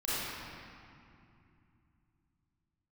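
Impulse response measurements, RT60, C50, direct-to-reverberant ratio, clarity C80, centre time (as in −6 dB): 2.6 s, −6.5 dB, −11.5 dB, −3.5 dB, 191 ms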